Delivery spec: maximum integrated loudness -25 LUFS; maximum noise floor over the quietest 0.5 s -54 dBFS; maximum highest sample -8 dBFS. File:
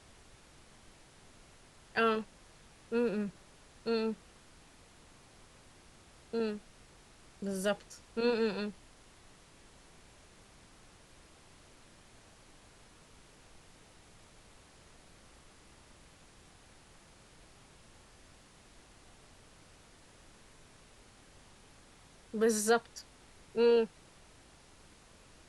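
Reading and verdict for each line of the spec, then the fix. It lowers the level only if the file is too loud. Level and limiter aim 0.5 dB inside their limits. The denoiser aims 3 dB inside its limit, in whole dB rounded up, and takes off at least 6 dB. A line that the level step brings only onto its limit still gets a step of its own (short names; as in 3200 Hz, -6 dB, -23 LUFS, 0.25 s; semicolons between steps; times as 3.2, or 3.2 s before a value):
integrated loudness -33.5 LUFS: OK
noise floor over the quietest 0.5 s -59 dBFS: OK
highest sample -17.0 dBFS: OK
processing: none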